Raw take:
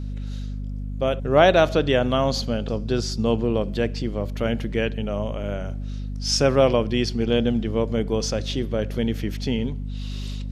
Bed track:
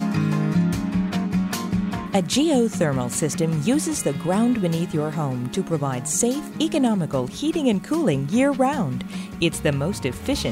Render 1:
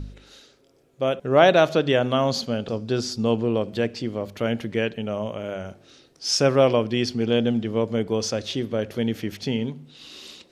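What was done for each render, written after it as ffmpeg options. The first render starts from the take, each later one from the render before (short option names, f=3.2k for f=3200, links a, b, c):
-af "bandreject=f=50:t=h:w=4,bandreject=f=100:t=h:w=4,bandreject=f=150:t=h:w=4,bandreject=f=200:t=h:w=4,bandreject=f=250:t=h:w=4"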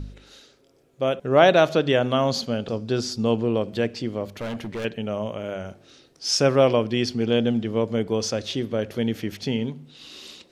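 -filter_complex "[0:a]asettb=1/sr,asplit=3[a][b][c];[a]atrim=end=4.284[d];[b]atrim=start=4.28:end=4.85,asetpts=PTS-STARTPTS,afade=t=in:d=0.004:c=qsin,afade=t=out:st=0.566:d=0.004:c=qsin,asoftclip=type=hard:threshold=-27.5dB[e];[c]atrim=start=4.846[f];[d][e]acrossfade=d=0.004:c1=hsin:c2=qsin[g];[g][f]acrossfade=d=0.004:c1=qsin:c2=hsin"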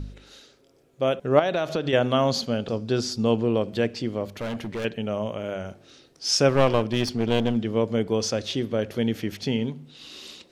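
-filter_complex "[0:a]asettb=1/sr,asplit=3[a][b][c];[a]atrim=end=1.394[d];[b]atrim=start=1.39:end=1.93,asetpts=PTS-STARTPTS,afade=t=in:d=0.004:c=qsin,afade=t=out:st=0.536:d=0.004:c=qsin,acompressor=threshold=-21dB:ratio=6:attack=3.2:release=140:knee=1:detection=peak[e];[c]atrim=start=1.926[f];[d][e]acrossfade=d=0.004:c1=hsin:c2=qsin[g];[g][f]acrossfade=d=0.004:c1=qsin:c2=hsin,asplit=3[h][i][j];[h]afade=t=out:st=6.48:d=0.02[k];[i]aeval=exprs='clip(val(0),-1,0.0422)':c=same,afade=t=in:st=6.48:d=0.02,afade=t=out:st=7.55:d=0.02[l];[j]afade=t=in:st=7.55:d=0.02[m];[k][l][m]amix=inputs=3:normalize=0"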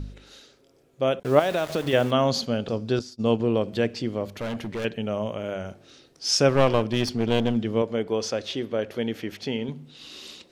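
-filter_complex "[0:a]asettb=1/sr,asplit=3[a][b][c];[a]atrim=end=1.234[d];[b]atrim=start=1.23:end=2.11,asetpts=PTS-STARTPTS,afade=t=in:d=0.004:c=qsin,afade=t=out:st=0.876:d=0.004:c=qsin,aeval=exprs='val(0)*gte(abs(val(0)),0.02)':c=same[e];[c]atrim=start=2.106[f];[d][e]acrossfade=d=0.004:c1=hsin:c2=qsin[g];[g][f]acrossfade=d=0.004:c1=qsin:c2=hsin,asettb=1/sr,asplit=3[h][i][j];[h]atrim=end=2.994[k];[i]atrim=start=2.99:end=3.4,asetpts=PTS-STARTPTS,afade=t=in:d=0.004:c=qsin,afade=t=out:st=0.406:d=0.004:c=qsin,agate=range=-33dB:threshold=-22dB:ratio=3:release=100:detection=peak[l];[j]atrim=start=3.396[m];[k][l]acrossfade=d=0.004:c1=hsin:c2=qsin[n];[n][m]acrossfade=d=0.004:c1=qsin:c2=hsin,asettb=1/sr,asplit=3[o][p][q];[o]atrim=end=7.824[r];[p]atrim=start=7.82:end=9.69,asetpts=PTS-STARTPTS,afade=t=in:d=0.004:c=qsin,afade=t=out:st=1.866:d=0.004:c=qsin,bass=f=250:g=-8,treble=f=4k:g=-5[s];[q]atrim=start=9.686[t];[r][s]acrossfade=d=0.004:c1=hsin:c2=qsin[u];[u][t]acrossfade=d=0.004:c1=qsin:c2=hsin"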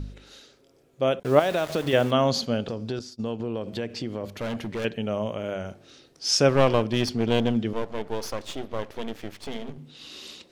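-filter_complex "[0:a]asettb=1/sr,asplit=3[a][b][c];[a]atrim=end=2.614[d];[b]atrim=start=2.61:end=4.24,asetpts=PTS-STARTPTS,afade=t=in:d=0.004:c=qsin,afade=t=out:st=1.626:d=0.004:c=qsin,acompressor=threshold=-26dB:ratio=4:attack=3.2:release=140:knee=1:detection=peak[e];[c]atrim=start=4.236[f];[d][e]acrossfade=d=0.004:c1=hsin:c2=qsin[g];[g][f]acrossfade=d=0.004:c1=qsin:c2=hsin,asettb=1/sr,asplit=3[h][i][j];[h]atrim=end=7.734[k];[i]atrim=start=7.73:end=9.78,asetpts=PTS-STARTPTS,afade=t=in:d=0.004:c=qsin,afade=t=out:st=2.046:d=0.004:c=qsin,aeval=exprs='max(val(0),0)':c=same[l];[j]atrim=start=9.776[m];[k][l]acrossfade=d=0.004:c1=hsin:c2=qsin[n];[n][m]acrossfade=d=0.004:c1=qsin:c2=hsin"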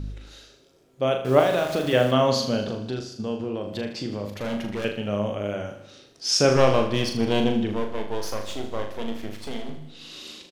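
-filter_complex "[0:a]asplit=2[a][b];[b]adelay=39,volume=-6dB[c];[a][c]amix=inputs=2:normalize=0,aecho=1:1:78|156|234|312|390|468:0.282|0.158|0.0884|0.0495|0.0277|0.0155"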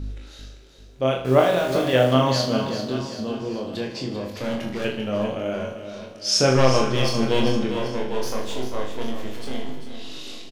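-filter_complex "[0:a]asplit=2[a][b];[b]adelay=23,volume=-4dB[c];[a][c]amix=inputs=2:normalize=0,aecho=1:1:393|786|1179|1572|1965:0.316|0.158|0.0791|0.0395|0.0198"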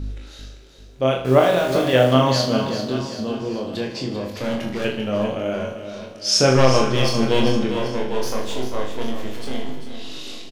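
-af "volume=2.5dB,alimiter=limit=-1dB:level=0:latency=1"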